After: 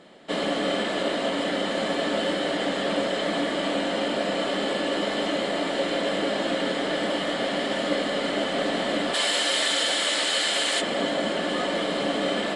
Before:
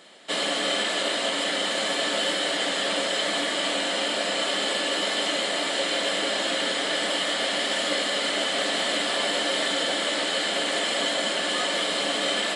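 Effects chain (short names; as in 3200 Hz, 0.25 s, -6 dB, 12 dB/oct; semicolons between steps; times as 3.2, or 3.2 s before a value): tilt -3.5 dB/oct, from 9.13 s +1.5 dB/oct, from 10.8 s -3.5 dB/oct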